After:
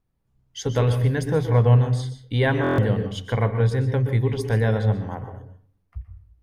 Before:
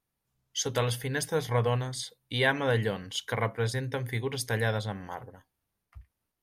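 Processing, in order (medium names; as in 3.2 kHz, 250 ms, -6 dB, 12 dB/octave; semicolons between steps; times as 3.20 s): tilt EQ -3 dB/octave; on a send at -8.5 dB: reverberation RT60 0.45 s, pre-delay 117 ms; on the sum: buffer glitch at 2.62 s, samples 1024, times 6; trim +2.5 dB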